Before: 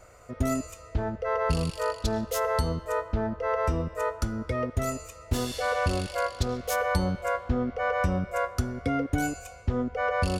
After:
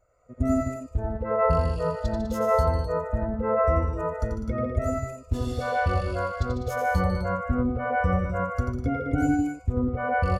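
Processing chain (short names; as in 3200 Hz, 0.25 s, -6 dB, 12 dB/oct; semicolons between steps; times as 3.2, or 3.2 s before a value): tapped delay 88/150/201/256 ms -4.5/-6.5/-8/-5.5 dB; spectral expander 1.5:1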